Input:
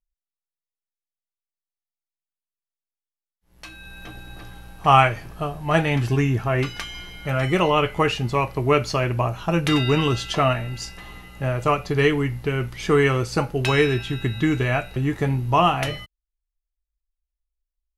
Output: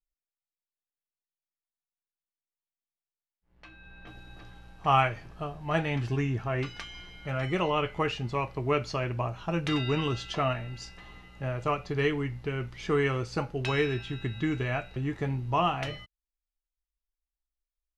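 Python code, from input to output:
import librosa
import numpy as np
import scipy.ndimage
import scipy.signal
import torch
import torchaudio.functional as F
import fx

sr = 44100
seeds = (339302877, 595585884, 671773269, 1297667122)

y = fx.lowpass(x, sr, hz=fx.steps((0.0, 2700.0), (4.07, 6200.0)), slope=12)
y = F.gain(torch.from_numpy(y), -8.5).numpy()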